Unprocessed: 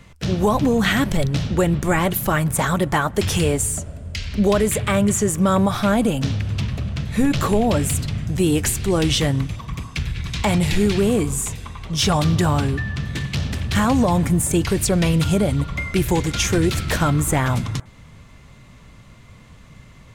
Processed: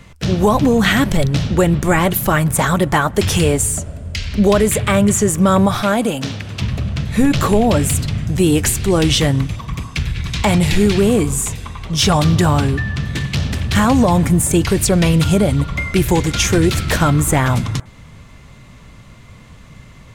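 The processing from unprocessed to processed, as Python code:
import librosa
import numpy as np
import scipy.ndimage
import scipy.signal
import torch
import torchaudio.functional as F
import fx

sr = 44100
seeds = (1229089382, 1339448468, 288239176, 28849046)

y = fx.highpass(x, sr, hz=310.0, slope=6, at=(5.82, 6.62))
y = F.gain(torch.from_numpy(y), 4.5).numpy()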